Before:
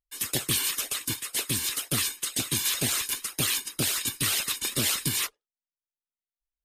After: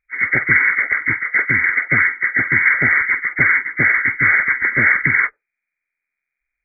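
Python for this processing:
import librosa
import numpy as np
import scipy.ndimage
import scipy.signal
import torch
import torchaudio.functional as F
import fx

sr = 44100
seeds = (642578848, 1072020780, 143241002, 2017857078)

y = fx.freq_compress(x, sr, knee_hz=1200.0, ratio=4.0)
y = y * librosa.db_to_amplitude(7.0)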